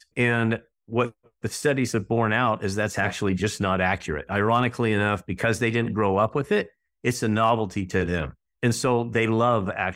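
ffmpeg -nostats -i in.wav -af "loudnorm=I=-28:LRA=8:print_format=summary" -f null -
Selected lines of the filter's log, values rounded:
Input Integrated:    -24.1 LUFS
Input True Peak:      -9.7 dBTP
Input LRA:             0.7 LU
Input Threshold:     -34.2 LUFS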